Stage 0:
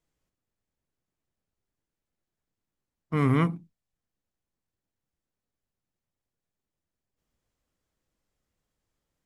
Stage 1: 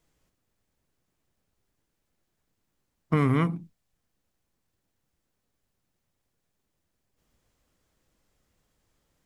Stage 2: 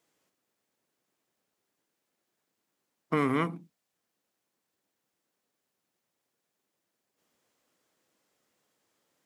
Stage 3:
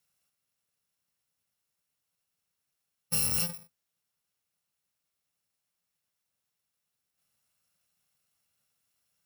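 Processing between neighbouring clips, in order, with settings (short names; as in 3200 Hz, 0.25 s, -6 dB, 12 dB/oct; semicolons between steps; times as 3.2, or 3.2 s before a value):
compressor 6:1, threshold -29 dBFS, peak gain reduction 10 dB; gain +9 dB
HPF 270 Hz 12 dB/oct
FFT order left unsorted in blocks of 128 samples; gain -1.5 dB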